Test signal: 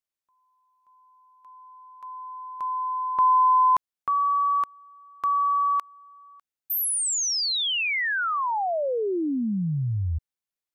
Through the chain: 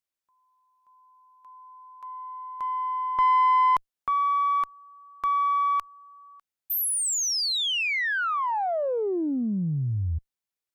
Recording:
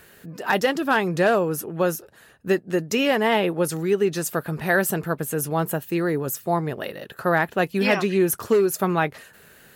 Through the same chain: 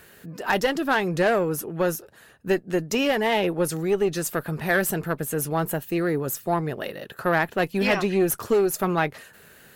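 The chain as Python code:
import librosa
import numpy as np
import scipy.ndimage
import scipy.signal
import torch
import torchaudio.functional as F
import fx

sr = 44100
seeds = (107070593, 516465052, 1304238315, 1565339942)

y = fx.diode_clip(x, sr, knee_db=-15.0)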